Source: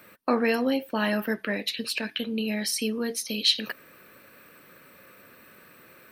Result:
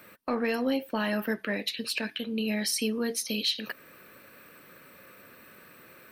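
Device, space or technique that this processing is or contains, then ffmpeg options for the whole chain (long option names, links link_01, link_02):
soft clipper into limiter: -af "asoftclip=type=tanh:threshold=-11dB,alimiter=limit=-18.5dB:level=0:latency=1:release=373"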